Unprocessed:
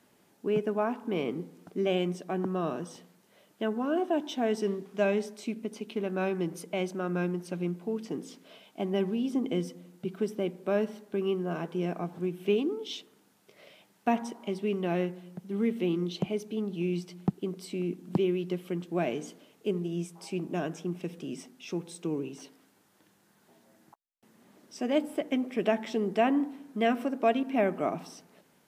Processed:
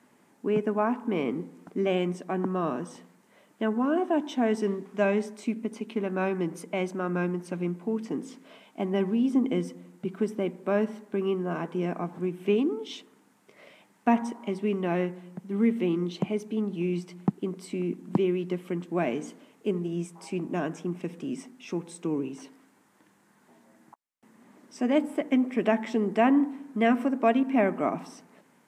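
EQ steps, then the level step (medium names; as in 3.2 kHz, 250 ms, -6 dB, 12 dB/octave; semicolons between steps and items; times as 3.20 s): ten-band graphic EQ 125 Hz +5 dB, 250 Hz +11 dB, 500 Hz +4 dB, 1 kHz +10 dB, 2 kHz +9 dB, 8 kHz +8 dB; -7.0 dB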